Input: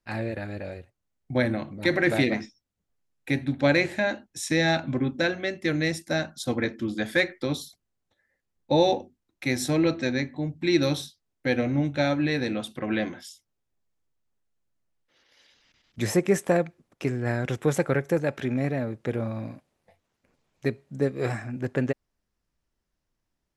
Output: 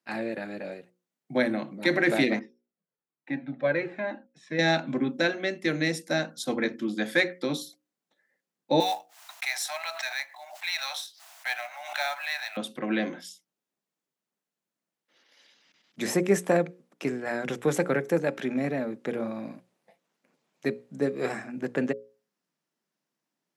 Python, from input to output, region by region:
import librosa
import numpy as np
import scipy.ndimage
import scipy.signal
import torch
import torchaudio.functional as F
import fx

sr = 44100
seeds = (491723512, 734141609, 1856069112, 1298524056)

y = fx.chain(x, sr, fx.lowpass(hz=2000.0, slope=12),
    fx.comb_cascade(direction='falling', hz=1.2), at=(2.39, 4.59))
y = fx.chain(y, sr, fx.steep_highpass(hz=640.0, slope=96),
    fx.quant_float(bits=2),
    fx.pre_swell(db_per_s=85.0), at=(8.8, 12.57))
y = scipy.signal.sosfilt(scipy.signal.butter(6, 160.0, 'highpass', fs=sr, output='sos'), y)
y = fx.hum_notches(y, sr, base_hz=60, count=9)